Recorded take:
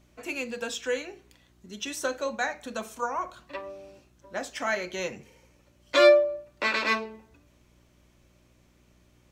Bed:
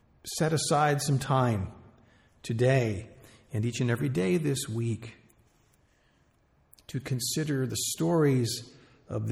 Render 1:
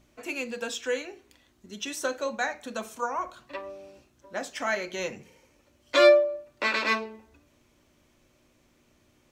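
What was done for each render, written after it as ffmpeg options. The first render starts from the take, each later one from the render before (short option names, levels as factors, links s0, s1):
-af "bandreject=f=60:t=h:w=4,bandreject=f=120:t=h:w=4,bandreject=f=180:t=h:w=4"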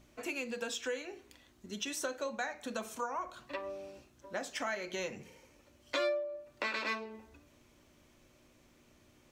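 -af "acompressor=threshold=0.0158:ratio=3"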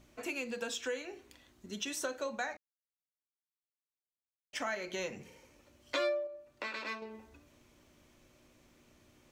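-filter_complex "[0:a]asplit=5[s0][s1][s2][s3][s4];[s0]atrim=end=2.57,asetpts=PTS-STARTPTS,afade=t=out:st=2.566:d=0.004:c=hsin[s5];[s1]atrim=start=2.57:end=4.53,asetpts=PTS-STARTPTS,volume=0[s6];[s2]atrim=start=4.53:end=6.272,asetpts=PTS-STARTPTS,afade=t=in:d=0.004:c=hsin[s7];[s3]atrim=start=6.268:end=7.022,asetpts=PTS-STARTPTS,volume=0.596[s8];[s4]atrim=start=7.018[s9];[s5][s6][s7]concat=n=3:v=0:a=1[s10];[s10][s8]acrossfade=d=0.004:c1=hsin:c2=hsin[s11];[s11][s9]acrossfade=d=0.004:c1=hsin:c2=hsin"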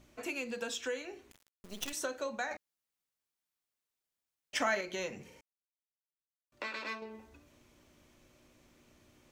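-filter_complex "[0:a]asettb=1/sr,asplit=3[s0][s1][s2];[s0]atrim=end=1.314[s3];[s1]atrim=start=1.31:end=1.93,asetpts=PTS-STARTPTS,afade=t=in:d=0.004:c=qsin,afade=t=out:st=0.616:d=0.004:c=qsin,acrusher=bits=6:dc=4:mix=0:aa=0.000001[s4];[s2]atrim=start=1.926[s5];[s3][s4]acrossfade=d=0.004:c1=hsin:c2=qsin[s6];[s6][s5]acrossfade=d=0.004:c1=qsin:c2=hsin,asplit=5[s7][s8][s9][s10][s11];[s7]atrim=end=2.512[s12];[s8]atrim=start=2.508:end=4.812,asetpts=PTS-STARTPTS,volume=1.88[s13];[s9]atrim=start=4.808:end=5.41,asetpts=PTS-STARTPTS,afade=t=out:st=0.598:d=0.004:c=hsin[s14];[s10]atrim=start=5.41:end=6.52,asetpts=PTS-STARTPTS,volume=0[s15];[s11]atrim=start=6.52,asetpts=PTS-STARTPTS,afade=t=in:d=0.004:c=hsin[s16];[s12][s13]acrossfade=d=0.004:c1=hsin:c2=hsin[s17];[s14][s15][s16]concat=n=3:v=0:a=1[s18];[s17][s18]acrossfade=d=0.004:c1=hsin:c2=hsin"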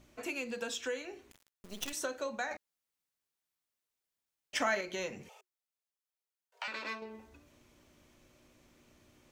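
-filter_complex "[0:a]asettb=1/sr,asplit=3[s0][s1][s2];[s0]atrim=end=5.294[s3];[s1]atrim=start=5.29:end=6.68,asetpts=PTS-STARTPTS,afade=t=in:d=0.004:c=qsin,afade=t=out:st=1.386:d=0.004:c=qsin,afreqshift=360[s4];[s2]atrim=start=6.676[s5];[s3][s4]acrossfade=d=0.004:c1=hsin:c2=qsin[s6];[s6][s5]acrossfade=d=0.004:c1=qsin:c2=hsin"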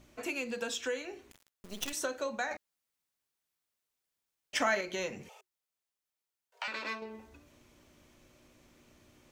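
-af "volume=1.26"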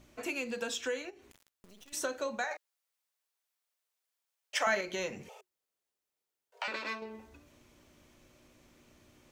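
-filter_complex "[0:a]asplit=3[s0][s1][s2];[s0]afade=t=out:st=1.09:d=0.02[s3];[s1]acompressor=threshold=0.00224:ratio=6:attack=3.2:release=140:knee=1:detection=peak,afade=t=in:st=1.09:d=0.02,afade=t=out:st=1.92:d=0.02[s4];[s2]afade=t=in:st=1.92:d=0.02[s5];[s3][s4][s5]amix=inputs=3:normalize=0,asettb=1/sr,asplit=3[s6][s7][s8];[s6]atrim=end=2.444[s9];[s7]atrim=start=2.44:end=4.67,asetpts=PTS-STARTPTS,afade=t=in:d=0.004:c=qsin,afade=t=out:st=2.226:d=0.004:c=qsin,highpass=f=450:w=0.5412,highpass=f=450:w=1.3066[s10];[s8]atrim=start=4.666[s11];[s9][s10]acrossfade=d=0.004:c1=hsin:c2=qsin[s12];[s12][s11]acrossfade=d=0.004:c1=qsin:c2=hsin,asettb=1/sr,asplit=3[s13][s14][s15];[s13]atrim=end=5.284[s16];[s14]atrim=start=5.28:end=6.76,asetpts=PTS-STARTPTS,afade=t=in:d=0.004:c=qsin,afade=t=out:st=1.476:d=0.004:c=qsin,equalizer=f=430:w=1:g=8[s17];[s15]atrim=start=6.756[s18];[s16][s17]acrossfade=d=0.004:c1=hsin:c2=qsin[s19];[s19][s18]acrossfade=d=0.004:c1=qsin:c2=hsin"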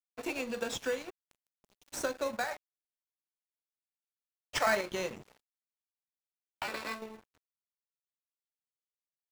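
-filter_complex "[0:a]asplit=2[s0][s1];[s1]acrusher=samples=14:mix=1:aa=0.000001,volume=0.501[s2];[s0][s2]amix=inputs=2:normalize=0,aeval=exprs='sgn(val(0))*max(abs(val(0))-0.00531,0)':c=same"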